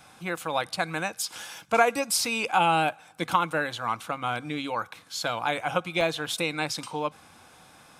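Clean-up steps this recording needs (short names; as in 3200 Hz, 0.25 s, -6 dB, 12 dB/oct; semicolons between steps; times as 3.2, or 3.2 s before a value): interpolate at 6.01, 1.6 ms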